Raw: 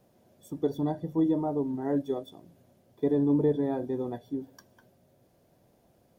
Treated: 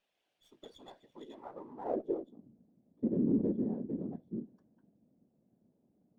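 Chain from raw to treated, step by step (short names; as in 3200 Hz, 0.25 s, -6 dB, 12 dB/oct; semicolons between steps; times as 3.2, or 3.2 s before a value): whisperiser; band-pass sweep 2900 Hz -> 220 Hz, 1.3–2.4; running maximum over 3 samples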